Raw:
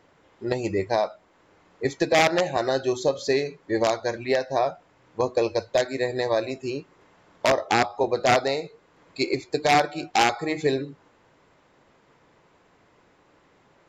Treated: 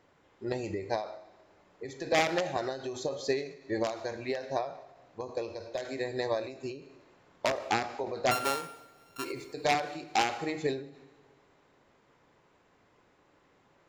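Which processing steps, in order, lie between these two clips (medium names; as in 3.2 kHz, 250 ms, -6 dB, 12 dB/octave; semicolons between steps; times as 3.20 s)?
8.31–9.25 s: sorted samples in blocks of 32 samples; two-slope reverb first 0.95 s, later 2.7 s, DRR 12 dB; endings held to a fixed fall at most 100 dB/s; trim -6 dB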